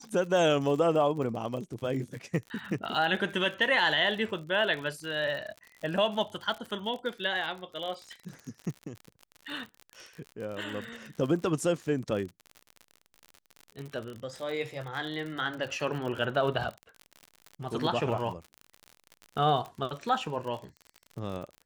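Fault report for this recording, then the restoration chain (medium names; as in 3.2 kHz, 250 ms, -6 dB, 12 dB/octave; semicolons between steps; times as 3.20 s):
crackle 55 per s -36 dBFS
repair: de-click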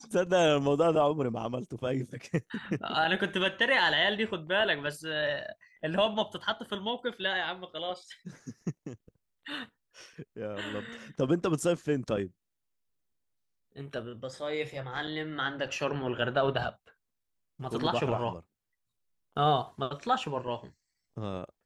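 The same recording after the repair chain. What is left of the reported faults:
nothing left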